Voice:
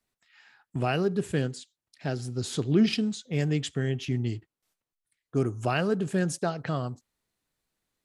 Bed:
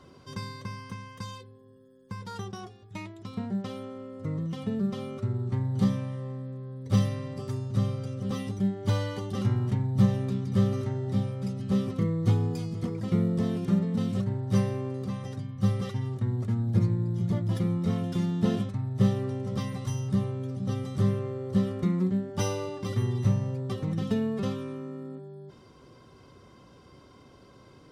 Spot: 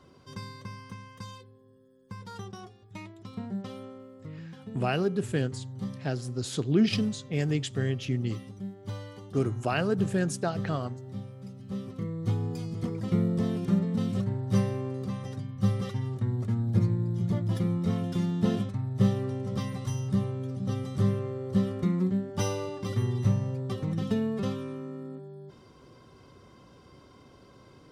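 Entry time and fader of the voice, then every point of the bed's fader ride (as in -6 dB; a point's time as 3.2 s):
4.00 s, -1.0 dB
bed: 3.86 s -3.5 dB
4.37 s -11 dB
11.59 s -11 dB
12.82 s -0.5 dB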